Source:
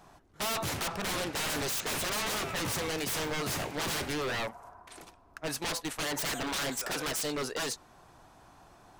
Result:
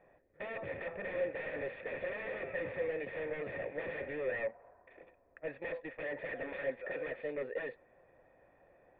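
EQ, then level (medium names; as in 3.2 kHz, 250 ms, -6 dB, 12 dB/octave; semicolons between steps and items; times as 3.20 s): cascade formant filter e; +6.5 dB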